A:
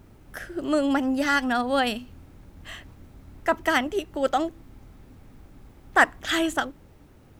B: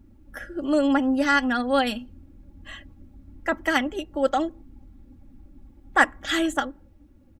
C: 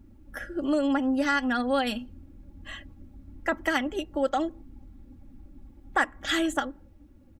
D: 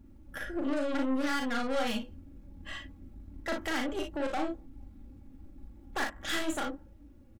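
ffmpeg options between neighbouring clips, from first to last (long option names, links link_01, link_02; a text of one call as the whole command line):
ffmpeg -i in.wav -af "aecho=1:1:3.6:0.6,afftdn=noise_reduction=13:noise_floor=-46,volume=-1.5dB" out.wav
ffmpeg -i in.wav -af "acompressor=threshold=-23dB:ratio=2.5" out.wav
ffmpeg -i in.wav -filter_complex "[0:a]aeval=exprs='(tanh(31.6*val(0)+0.6)-tanh(0.6))/31.6':channel_layout=same,asplit=2[link_01][link_02];[link_02]aecho=0:1:38|56:0.596|0.422[link_03];[link_01][link_03]amix=inputs=2:normalize=0" out.wav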